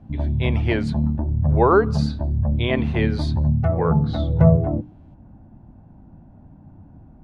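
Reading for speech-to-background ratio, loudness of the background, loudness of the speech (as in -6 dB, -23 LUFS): -2.0 dB, -21.5 LUFS, -23.5 LUFS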